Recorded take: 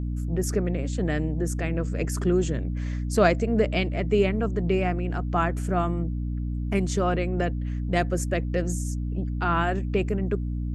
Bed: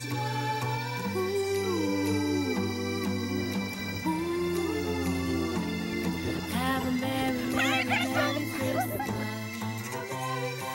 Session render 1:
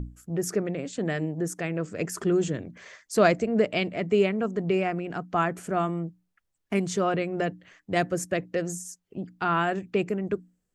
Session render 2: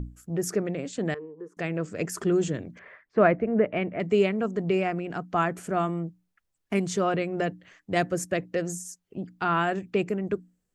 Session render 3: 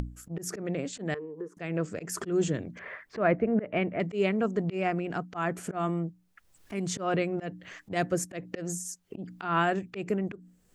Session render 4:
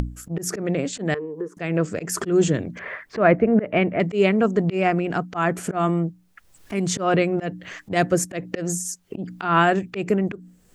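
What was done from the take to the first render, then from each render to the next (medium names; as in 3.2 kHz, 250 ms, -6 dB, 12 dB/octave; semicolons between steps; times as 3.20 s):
hum notches 60/120/180/240/300 Hz
1.14–1.57 s: two resonant band-passes 680 Hz, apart 1.2 oct; 2.79–4.00 s: low-pass 2.2 kHz 24 dB/octave
slow attack 163 ms; upward compressor, threshold -31 dBFS
trim +8.5 dB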